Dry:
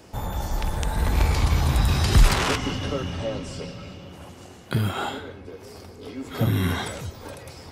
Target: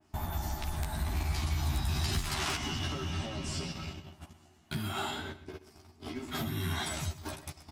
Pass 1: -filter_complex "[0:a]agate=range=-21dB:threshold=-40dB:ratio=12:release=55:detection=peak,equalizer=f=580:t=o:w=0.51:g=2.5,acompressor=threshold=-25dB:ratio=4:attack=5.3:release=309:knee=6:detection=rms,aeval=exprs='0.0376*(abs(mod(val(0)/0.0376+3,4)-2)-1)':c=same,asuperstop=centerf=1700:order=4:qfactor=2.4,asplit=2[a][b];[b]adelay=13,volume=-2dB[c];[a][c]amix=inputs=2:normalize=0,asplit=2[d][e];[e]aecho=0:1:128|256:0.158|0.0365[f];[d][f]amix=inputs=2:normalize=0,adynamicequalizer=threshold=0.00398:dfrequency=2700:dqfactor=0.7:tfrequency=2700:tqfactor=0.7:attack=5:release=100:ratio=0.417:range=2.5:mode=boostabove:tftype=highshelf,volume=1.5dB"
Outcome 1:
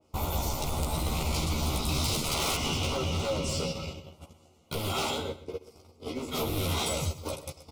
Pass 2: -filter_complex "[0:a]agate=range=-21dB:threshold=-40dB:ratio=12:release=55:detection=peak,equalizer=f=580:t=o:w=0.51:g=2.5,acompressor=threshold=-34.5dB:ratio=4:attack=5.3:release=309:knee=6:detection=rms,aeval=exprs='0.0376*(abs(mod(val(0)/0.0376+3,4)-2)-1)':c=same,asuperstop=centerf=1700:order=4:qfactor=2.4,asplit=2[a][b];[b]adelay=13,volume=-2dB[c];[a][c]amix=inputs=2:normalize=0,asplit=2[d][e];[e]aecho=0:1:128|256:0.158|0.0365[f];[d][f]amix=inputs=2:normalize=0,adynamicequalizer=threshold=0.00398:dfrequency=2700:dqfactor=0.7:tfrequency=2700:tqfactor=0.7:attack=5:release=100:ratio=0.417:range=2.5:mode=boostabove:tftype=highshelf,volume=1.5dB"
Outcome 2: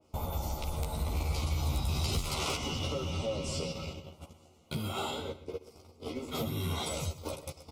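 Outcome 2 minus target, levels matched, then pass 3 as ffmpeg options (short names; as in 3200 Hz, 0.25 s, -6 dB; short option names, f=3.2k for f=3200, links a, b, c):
500 Hz band +6.0 dB
-filter_complex "[0:a]agate=range=-21dB:threshold=-40dB:ratio=12:release=55:detection=peak,equalizer=f=580:t=o:w=0.51:g=2.5,acompressor=threshold=-34.5dB:ratio=4:attack=5.3:release=309:knee=6:detection=rms,aeval=exprs='0.0376*(abs(mod(val(0)/0.0376+3,4)-2)-1)':c=same,asuperstop=centerf=500:order=4:qfactor=2.4,asplit=2[a][b];[b]adelay=13,volume=-2dB[c];[a][c]amix=inputs=2:normalize=0,asplit=2[d][e];[e]aecho=0:1:128|256:0.158|0.0365[f];[d][f]amix=inputs=2:normalize=0,adynamicequalizer=threshold=0.00398:dfrequency=2700:dqfactor=0.7:tfrequency=2700:tqfactor=0.7:attack=5:release=100:ratio=0.417:range=2.5:mode=boostabove:tftype=highshelf,volume=1.5dB"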